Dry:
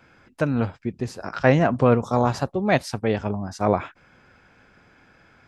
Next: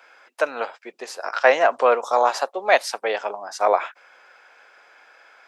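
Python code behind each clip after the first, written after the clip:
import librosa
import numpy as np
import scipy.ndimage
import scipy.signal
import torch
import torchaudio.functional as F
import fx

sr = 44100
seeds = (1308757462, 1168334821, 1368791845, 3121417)

y = scipy.signal.sosfilt(scipy.signal.butter(4, 530.0, 'highpass', fs=sr, output='sos'), x)
y = y * 10.0 ** (5.5 / 20.0)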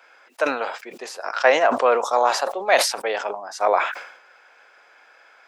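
y = fx.sustainer(x, sr, db_per_s=80.0)
y = y * 10.0 ** (-1.0 / 20.0)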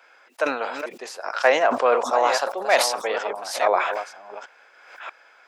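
y = fx.reverse_delay(x, sr, ms=637, wet_db=-8.5)
y = y * 10.0 ** (-1.5 / 20.0)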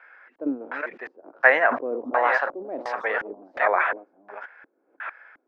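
y = fx.filter_lfo_lowpass(x, sr, shape='square', hz=1.4, low_hz=300.0, high_hz=1800.0, q=3.9)
y = y * 10.0 ** (-4.0 / 20.0)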